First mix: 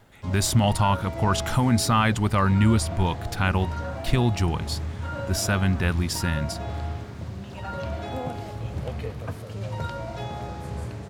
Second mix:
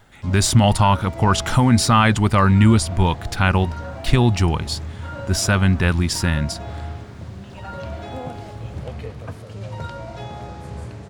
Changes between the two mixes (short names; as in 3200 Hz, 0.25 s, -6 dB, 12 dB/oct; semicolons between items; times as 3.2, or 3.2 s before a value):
speech +6.0 dB; master: add bell 13000 Hz -15 dB 0.2 oct